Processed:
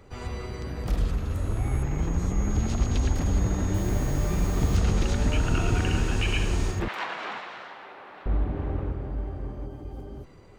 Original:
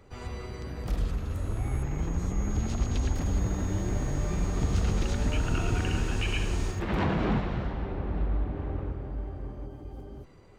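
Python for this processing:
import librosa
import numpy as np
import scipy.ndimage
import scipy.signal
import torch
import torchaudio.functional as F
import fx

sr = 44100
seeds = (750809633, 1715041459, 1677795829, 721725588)

y = fx.quant_dither(x, sr, seeds[0], bits=8, dither='none', at=(3.74, 4.77))
y = fx.highpass(y, sr, hz=1000.0, slope=12, at=(6.88, 8.26))
y = y * librosa.db_to_amplitude(3.5)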